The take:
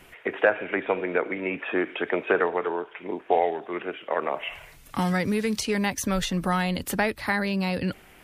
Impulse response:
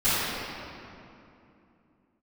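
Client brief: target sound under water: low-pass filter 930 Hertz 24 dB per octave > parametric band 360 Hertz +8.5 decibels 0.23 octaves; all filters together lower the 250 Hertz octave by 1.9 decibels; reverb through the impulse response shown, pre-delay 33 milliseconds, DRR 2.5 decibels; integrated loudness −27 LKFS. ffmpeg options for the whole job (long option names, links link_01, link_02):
-filter_complex "[0:a]equalizer=frequency=250:width_type=o:gain=-7,asplit=2[link_01][link_02];[1:a]atrim=start_sample=2205,adelay=33[link_03];[link_02][link_03]afir=irnorm=-1:irlink=0,volume=-19.5dB[link_04];[link_01][link_04]amix=inputs=2:normalize=0,lowpass=frequency=930:width=0.5412,lowpass=frequency=930:width=1.3066,equalizer=frequency=360:width_type=o:width=0.23:gain=8.5"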